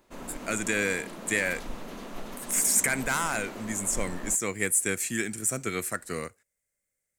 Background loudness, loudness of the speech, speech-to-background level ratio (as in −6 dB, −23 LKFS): −41.5 LKFS, −27.5 LKFS, 14.0 dB